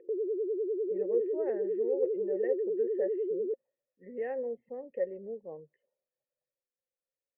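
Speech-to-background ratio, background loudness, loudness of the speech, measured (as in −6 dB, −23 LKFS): −3.5 dB, −33.0 LKFS, −36.5 LKFS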